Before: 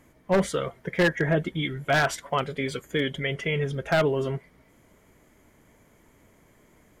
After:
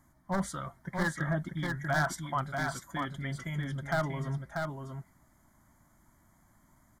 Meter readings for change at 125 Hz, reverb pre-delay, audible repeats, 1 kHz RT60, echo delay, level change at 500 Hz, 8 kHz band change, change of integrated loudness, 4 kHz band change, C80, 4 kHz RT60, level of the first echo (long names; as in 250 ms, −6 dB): −4.0 dB, no reverb audible, 1, no reverb audible, 639 ms, −12.5 dB, −4.0 dB, −8.0 dB, −12.0 dB, no reverb audible, no reverb audible, −4.5 dB